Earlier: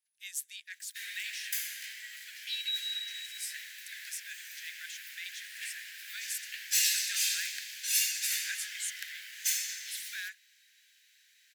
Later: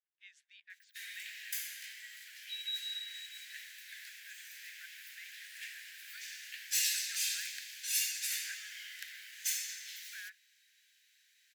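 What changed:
speech: add tape spacing loss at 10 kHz 42 dB; background -4.5 dB

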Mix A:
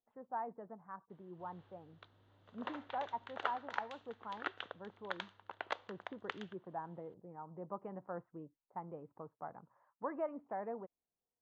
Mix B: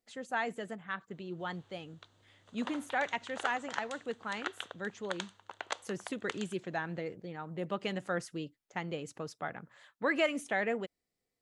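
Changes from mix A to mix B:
speech: remove ladder low-pass 1100 Hz, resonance 60%; master: remove air absorption 270 m

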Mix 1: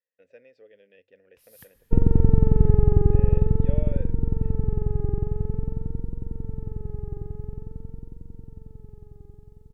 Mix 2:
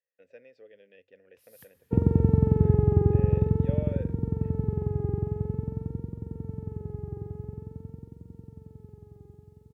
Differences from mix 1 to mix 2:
first sound -4.0 dB; master: add HPF 76 Hz 24 dB/oct

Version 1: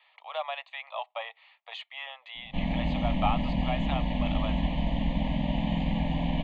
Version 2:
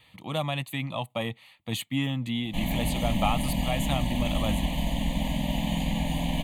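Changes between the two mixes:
speech: remove steep high-pass 610 Hz 48 dB/oct; master: remove Gaussian blur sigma 2.5 samples

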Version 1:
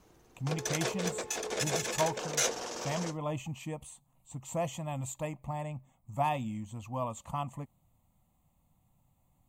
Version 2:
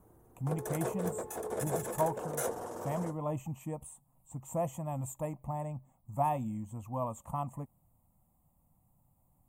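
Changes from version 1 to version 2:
background: add fifteen-band EQ 100 Hz +9 dB, 2500 Hz -7 dB, 6300 Hz -7 dB; master: add EQ curve 940 Hz 0 dB, 4600 Hz -19 dB, 9600 Hz +4 dB

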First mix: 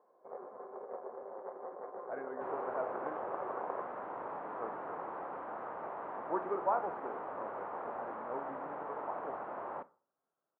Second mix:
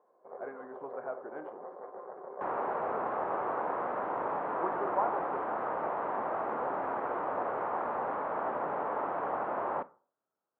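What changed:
speech: entry -1.70 s; second sound +8.5 dB

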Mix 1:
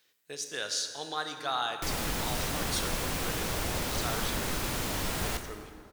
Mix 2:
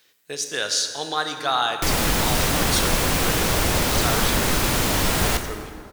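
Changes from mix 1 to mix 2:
speech +9.5 dB; background +11.5 dB

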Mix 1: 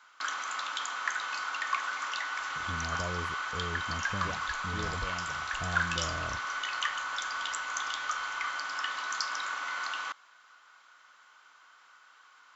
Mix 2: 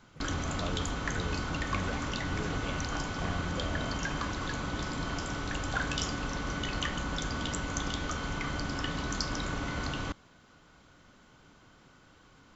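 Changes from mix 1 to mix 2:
speech: entry -2.40 s; background: remove resonant high-pass 1200 Hz, resonance Q 2

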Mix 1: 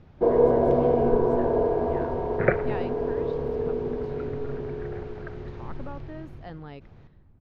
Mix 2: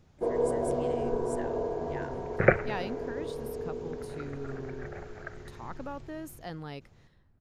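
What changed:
first sound -9.5 dB; master: remove air absorption 270 m

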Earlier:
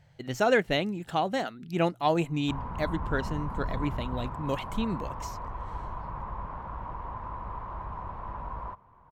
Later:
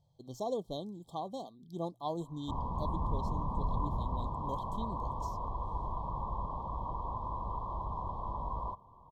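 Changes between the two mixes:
speech -11.5 dB; master: add brick-wall FIR band-stop 1200–3100 Hz

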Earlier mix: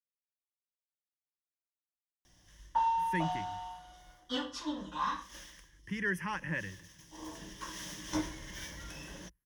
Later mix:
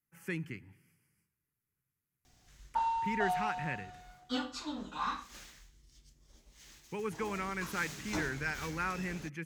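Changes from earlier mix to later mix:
speech: entry -2.85 s; master: remove ripple EQ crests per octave 1.2, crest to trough 10 dB

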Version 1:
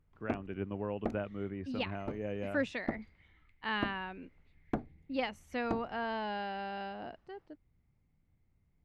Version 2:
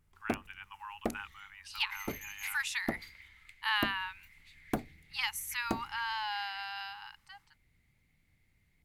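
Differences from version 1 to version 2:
speech: add brick-wall FIR high-pass 790 Hz; second sound +11.0 dB; master: remove tape spacing loss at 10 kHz 27 dB

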